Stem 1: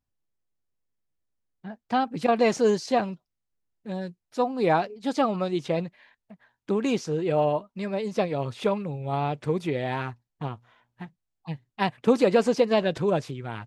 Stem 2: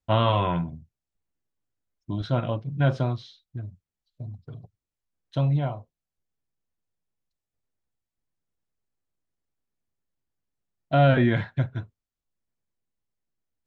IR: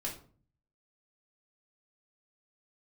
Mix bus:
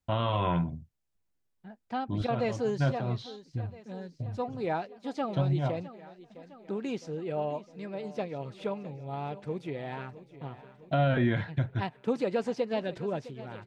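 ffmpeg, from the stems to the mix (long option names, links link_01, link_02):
-filter_complex "[0:a]highshelf=frequency=7800:gain=-11,bandreject=frequency=1100:width=13,volume=-9dB,asplit=3[link_01][link_02][link_03];[link_02]volume=-16dB[link_04];[1:a]volume=0.5dB[link_05];[link_03]apad=whole_len=602764[link_06];[link_05][link_06]sidechaincompress=threshold=-38dB:ratio=8:attack=8.8:release=212[link_07];[link_04]aecho=0:1:659|1318|1977|2636|3295|3954|4613|5272|5931|6590:1|0.6|0.36|0.216|0.13|0.0778|0.0467|0.028|0.0168|0.0101[link_08];[link_01][link_07][link_08]amix=inputs=3:normalize=0,alimiter=limit=-17.5dB:level=0:latency=1:release=206"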